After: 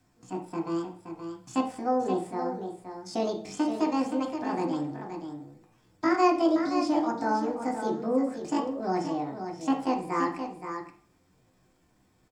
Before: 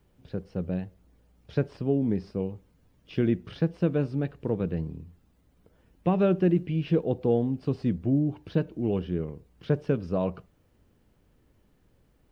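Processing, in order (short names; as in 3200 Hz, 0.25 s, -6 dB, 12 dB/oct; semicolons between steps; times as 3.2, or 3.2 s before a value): pitch shift +10.5 st; echo 0.523 s -8 dB; reverb RT60 0.45 s, pre-delay 3 ms, DRR 1.5 dB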